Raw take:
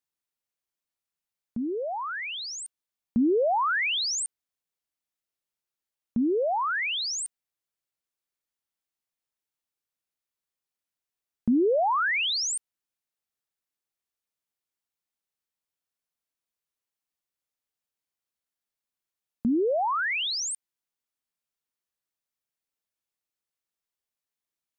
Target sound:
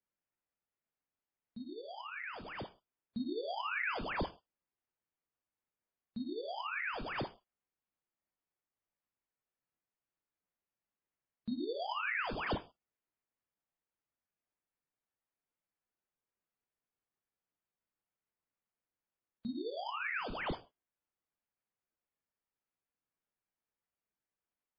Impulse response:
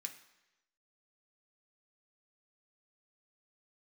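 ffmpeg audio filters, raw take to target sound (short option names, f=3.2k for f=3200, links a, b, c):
-filter_complex "[1:a]atrim=start_sample=2205,atrim=end_sample=6174[a];[0:a][a]afir=irnorm=-1:irlink=0,acrusher=samples=11:mix=1:aa=0.000001,volume=-6.5dB" -ar 11025 -c:a libmp3lame -b:a 16k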